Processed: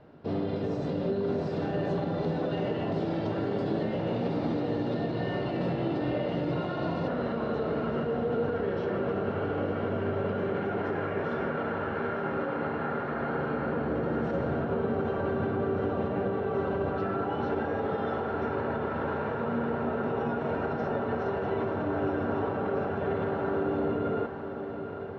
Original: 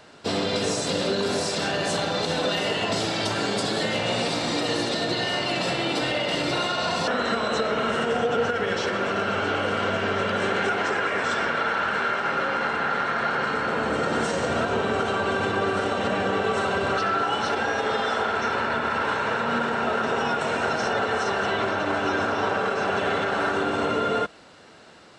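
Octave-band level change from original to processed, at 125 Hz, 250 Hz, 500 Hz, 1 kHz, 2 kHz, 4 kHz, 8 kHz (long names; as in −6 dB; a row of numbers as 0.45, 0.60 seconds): +1.0 dB, −1.0 dB, −3.5 dB, −9.0 dB, −13.5 dB, −21.0 dB, below −30 dB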